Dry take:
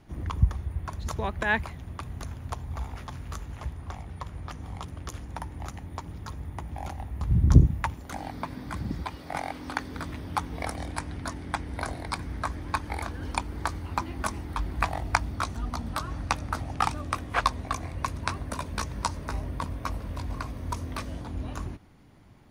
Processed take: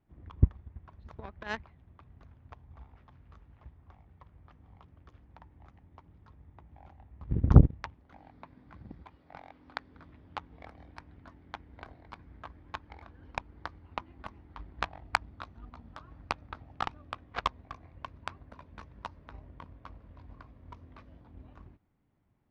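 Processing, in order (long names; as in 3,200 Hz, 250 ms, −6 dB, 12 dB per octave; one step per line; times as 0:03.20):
high-frequency loss of the air 310 metres
harmonic generator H 7 −18 dB, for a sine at −3.5 dBFS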